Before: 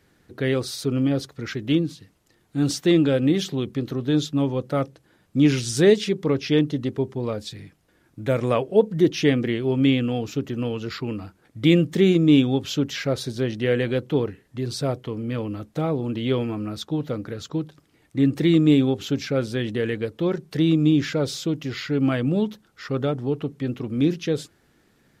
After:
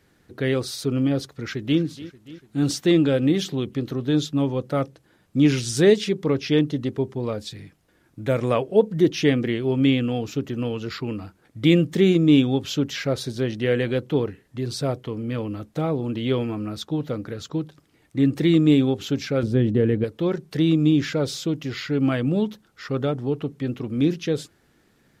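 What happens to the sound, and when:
0:01.25–0:01.80: delay throw 290 ms, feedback 65%, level −17 dB
0:19.43–0:20.04: tilt shelving filter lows +9 dB, about 740 Hz

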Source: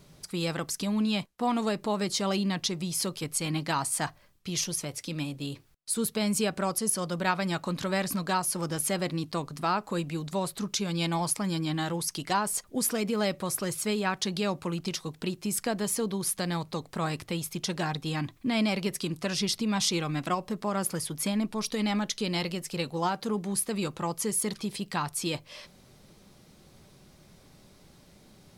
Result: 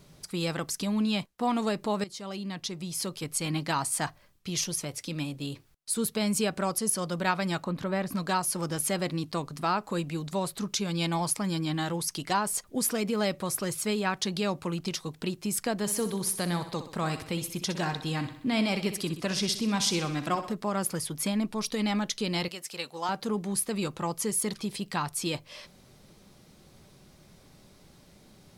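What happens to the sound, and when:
0:02.04–0:03.48: fade in, from −14.5 dB
0:07.64–0:08.15: parametric band 7,100 Hz −12.5 dB 2.6 octaves
0:15.80–0:20.53: repeating echo 63 ms, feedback 53%, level −11 dB
0:22.48–0:23.09: high-pass filter 900 Hz 6 dB per octave

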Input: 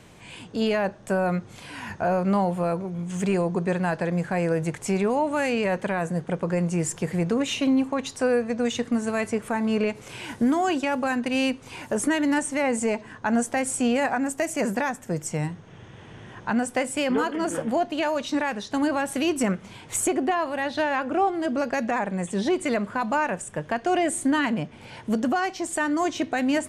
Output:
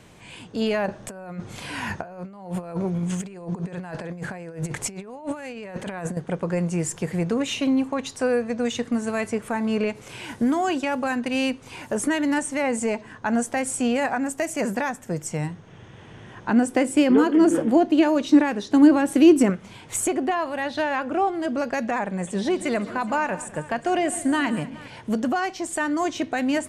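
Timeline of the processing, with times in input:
0:00.86–0:06.17: compressor whose output falls as the input rises −30 dBFS, ratio −0.5
0:16.48–0:19.50: parametric band 320 Hz +13 dB 0.78 octaves
0:22.03–0:24.88: multi-tap delay 139/205/418 ms −16.5/−19/−19.5 dB

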